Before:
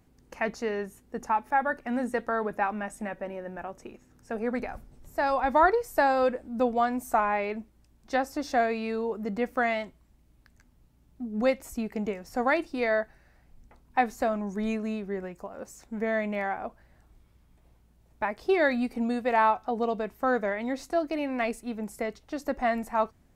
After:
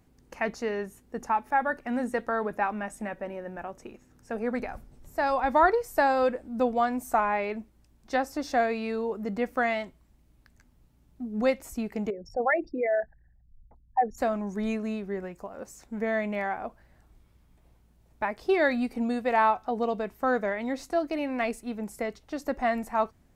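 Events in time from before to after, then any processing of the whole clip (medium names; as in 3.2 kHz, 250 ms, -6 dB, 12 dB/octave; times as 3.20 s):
12.10–14.18 s: resonances exaggerated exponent 3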